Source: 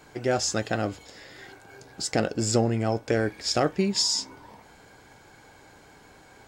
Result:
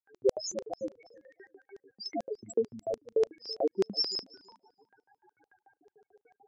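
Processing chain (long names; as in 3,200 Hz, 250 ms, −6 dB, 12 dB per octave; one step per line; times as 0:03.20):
spectral peaks only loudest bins 2
auto-filter high-pass square 6.8 Hz 400–5,900 Hz
feedback echo with a low-pass in the loop 330 ms, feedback 16%, low-pass 4,000 Hz, level −21.5 dB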